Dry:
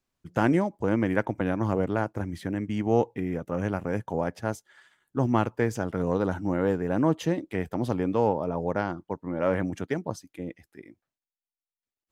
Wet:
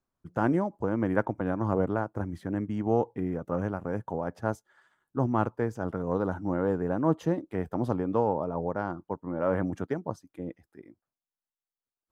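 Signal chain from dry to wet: resonant high shelf 1.7 kHz -7.5 dB, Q 1.5; random flutter of the level, depth 55%

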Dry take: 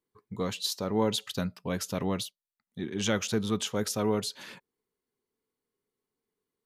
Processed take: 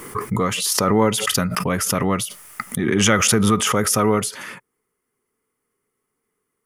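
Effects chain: graphic EQ with 31 bands 125 Hz +3 dB, 1.25 kHz +10 dB, 2 kHz +7 dB, 4 kHz -12 dB, 10 kHz +10 dB; swell ahead of each attack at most 21 dB/s; trim +8.5 dB

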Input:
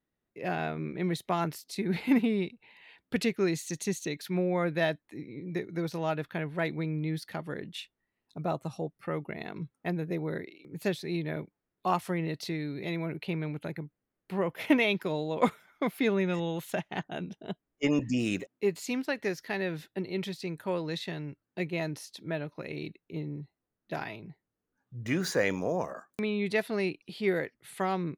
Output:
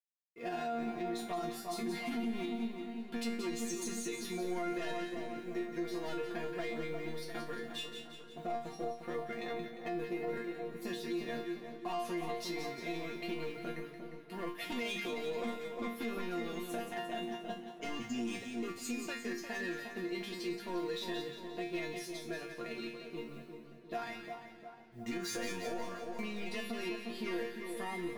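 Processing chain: companding laws mixed up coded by A; hum notches 50/100/150/200 Hz; saturation -28 dBFS, distortion -10 dB; compression 1.5:1, threshold -39 dBFS, peak gain reduction 3.5 dB; chord resonator A#3 fifth, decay 0.33 s; on a send: two-band feedback delay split 1.4 kHz, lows 353 ms, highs 176 ms, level -7 dB; on the sum: peak limiter -47.5 dBFS, peak gain reduction 8.5 dB; modulated delay 213 ms, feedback 77%, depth 176 cents, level -22.5 dB; trim +18 dB

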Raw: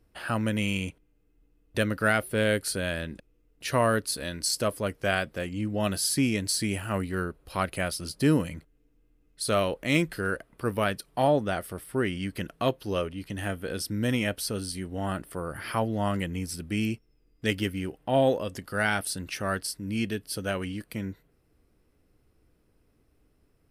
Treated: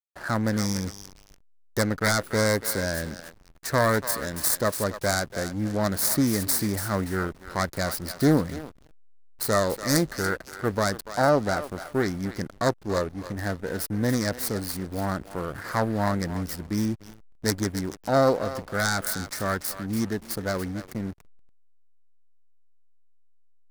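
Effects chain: self-modulated delay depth 0.32 ms; Chebyshev band-stop 1.9–4.2 kHz, order 2; treble shelf 5.5 kHz +4 dB; thinning echo 287 ms, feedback 40%, high-pass 890 Hz, level -8.5 dB; hysteresis with a dead band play -36 dBFS; trim +4 dB

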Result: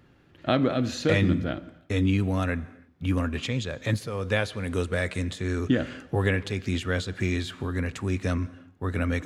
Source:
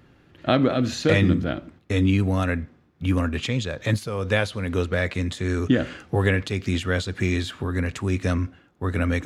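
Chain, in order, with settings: 4.64–5.23 s: peaking EQ 8.9 kHz +13 dB 0.48 oct; on a send: reverberation, pre-delay 113 ms, DRR 21 dB; on the sum: trim -3.5 dB

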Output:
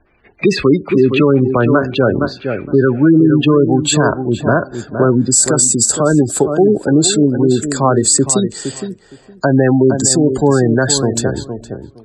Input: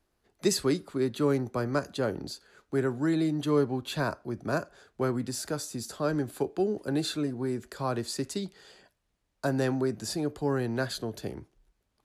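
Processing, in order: spectral gate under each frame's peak -20 dB strong; resonant low-pass 2.4 kHz, resonance Q 14, from 3.73 s 7.9 kHz; filtered feedback delay 464 ms, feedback 16%, low-pass 1.6 kHz, level -9 dB; loudness maximiser +19.5 dB; trim -1 dB

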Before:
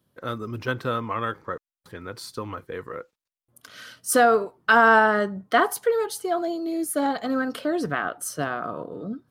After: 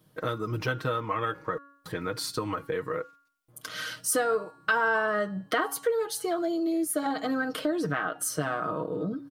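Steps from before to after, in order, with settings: comb 6.4 ms, depth 64%; de-hum 281.3 Hz, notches 32; compression 3:1, threshold -35 dBFS, peak gain reduction 17.5 dB; trim +6 dB

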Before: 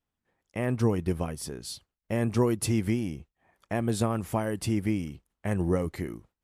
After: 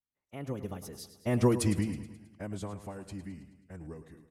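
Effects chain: Doppler pass-by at 2.18 s, 40 m/s, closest 18 m; time stretch by phase-locked vocoder 0.67×; feedback delay 107 ms, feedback 56%, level -12.5 dB

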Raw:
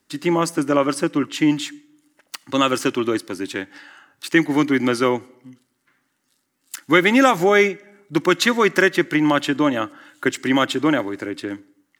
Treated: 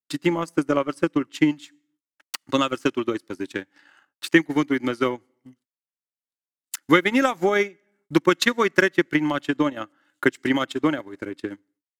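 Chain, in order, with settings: gate -53 dBFS, range -32 dB; transient shaper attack +9 dB, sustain -12 dB; trim -7.5 dB

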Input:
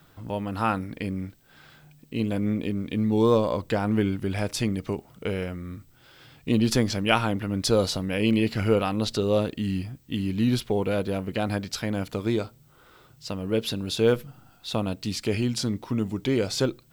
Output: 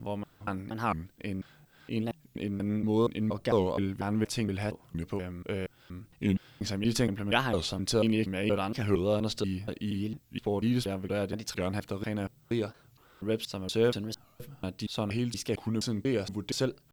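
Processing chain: slices played last to first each 236 ms, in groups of 2; warped record 45 rpm, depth 250 cents; trim -5 dB

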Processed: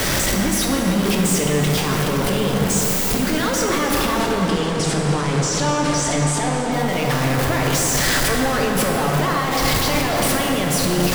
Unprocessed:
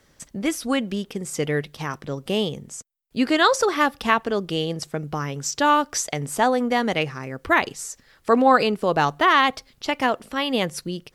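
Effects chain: jump at every zero crossing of -18.5 dBFS; 4.05–6.72 s: steep low-pass 9.9 kHz 48 dB/octave; waveshaping leveller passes 2; peak limiter -15 dBFS, peak gain reduction 12 dB; filtered feedback delay 288 ms, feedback 79%, low-pass 3.9 kHz, level -9.5 dB; plate-style reverb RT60 2.8 s, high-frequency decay 0.55×, DRR 0 dB; trim -4.5 dB

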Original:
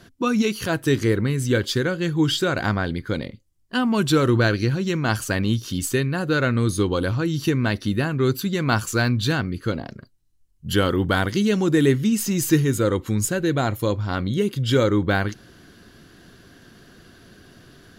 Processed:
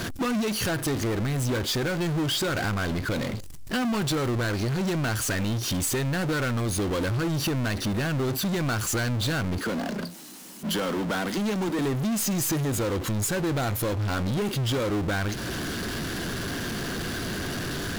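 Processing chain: compression, threshold -32 dBFS, peak gain reduction 18.5 dB; 9.58–11.79 s: rippled Chebyshev high-pass 170 Hz, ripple 3 dB; power-law waveshaper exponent 0.35

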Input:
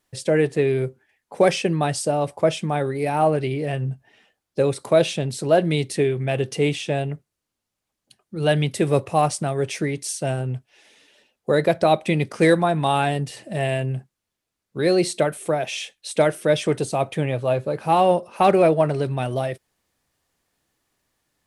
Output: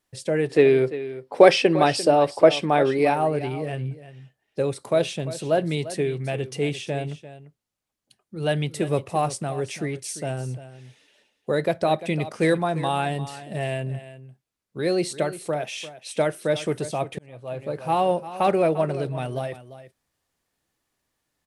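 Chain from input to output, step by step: 0.50–3.14 s: time-frequency box 240–5700 Hz +9 dB; on a send: delay 346 ms -14.5 dB; 16.90–17.62 s: on the sum: slow attack 739 ms; trim -4.5 dB

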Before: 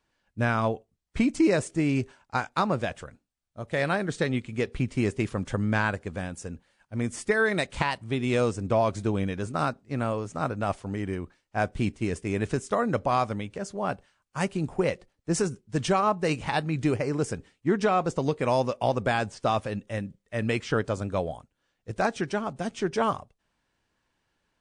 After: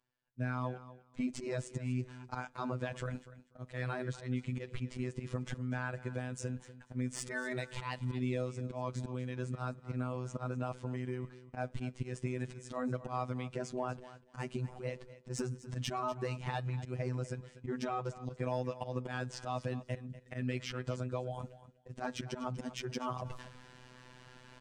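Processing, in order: gate with hold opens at -54 dBFS; Bessel low-pass 7.3 kHz; peaking EQ 160 Hz +7 dB 0.79 oct; reverse; upward compressor, threshold -33 dBFS; reverse; slow attack 326 ms; compression 12:1, threshold -37 dBFS, peak gain reduction 19 dB; robot voice 126 Hz; saturation -27 dBFS, distortion -24 dB; feedback delay 244 ms, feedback 16%, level -15.5 dB; on a send at -22 dB: reverberation RT60 0.60 s, pre-delay 3 ms; on the sum: trim +7 dB

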